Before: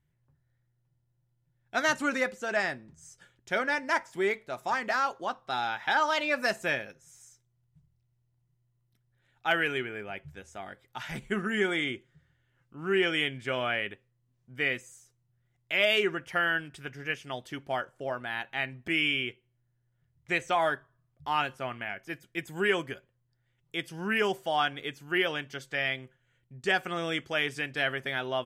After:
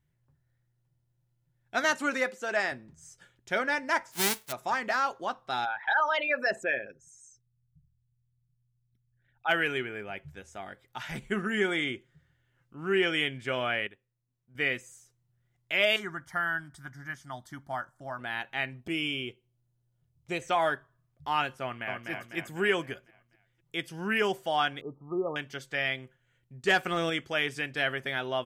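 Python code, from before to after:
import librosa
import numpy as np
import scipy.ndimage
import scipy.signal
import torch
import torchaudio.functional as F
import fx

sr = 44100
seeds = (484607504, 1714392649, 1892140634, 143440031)

y = fx.highpass(x, sr, hz=240.0, slope=12, at=(1.84, 2.72))
y = fx.envelope_flatten(y, sr, power=0.1, at=(4.11, 4.51), fade=0.02)
y = fx.envelope_sharpen(y, sr, power=2.0, at=(5.64, 9.48), fade=0.02)
y = fx.fixed_phaser(y, sr, hz=1100.0, stages=4, at=(15.96, 18.19))
y = fx.peak_eq(y, sr, hz=1800.0, db=-12.5, octaves=0.83, at=(18.8, 20.42))
y = fx.echo_throw(y, sr, start_s=21.62, length_s=0.48, ms=250, feedback_pct=50, wet_db=-4.0)
y = fx.brickwall_lowpass(y, sr, high_hz=1300.0, at=(24.81, 25.36))
y = fx.leveller(y, sr, passes=1, at=(26.67, 27.1))
y = fx.edit(y, sr, fx.clip_gain(start_s=13.87, length_s=0.68, db=-9.5), tone=tone)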